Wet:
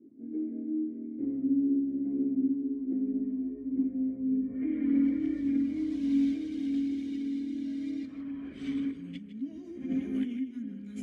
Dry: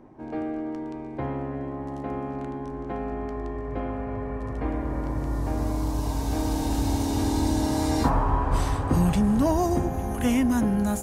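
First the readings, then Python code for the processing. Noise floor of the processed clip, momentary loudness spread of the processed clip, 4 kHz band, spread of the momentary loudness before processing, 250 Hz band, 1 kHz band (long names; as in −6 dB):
−45 dBFS, 12 LU, below −15 dB, 11 LU, −2.0 dB, below −30 dB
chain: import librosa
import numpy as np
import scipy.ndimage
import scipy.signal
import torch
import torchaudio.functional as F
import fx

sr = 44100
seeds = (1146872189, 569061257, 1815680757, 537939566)

y = scipy.signal.sosfilt(scipy.signal.butter(2, 91.0, 'highpass', fs=sr, output='sos'), x)
y = fx.hum_notches(y, sr, base_hz=60, count=3)
y = fx.filter_sweep_lowpass(y, sr, from_hz=480.0, to_hz=11000.0, start_s=4.39, end_s=4.97, q=0.75)
y = fx.over_compress(y, sr, threshold_db=-31.0, ratio=-1.0)
y = fx.vowel_filter(y, sr, vowel='i')
y = fx.spec_erase(y, sr, start_s=1.56, length_s=0.41, low_hz=700.0, high_hz=1600.0)
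y = fx.chorus_voices(y, sr, voices=6, hz=0.42, base_ms=16, depth_ms=2.9, mix_pct=65)
y = y + 10.0 ** (-11.5 / 20.0) * np.pad(y, (int(155 * sr / 1000.0), 0))[:len(y)]
y = F.gain(torch.from_numpy(y), 7.0).numpy()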